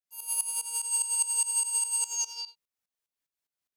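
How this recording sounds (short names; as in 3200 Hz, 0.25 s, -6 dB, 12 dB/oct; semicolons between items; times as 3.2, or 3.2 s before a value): tremolo saw up 4.9 Hz, depth 85%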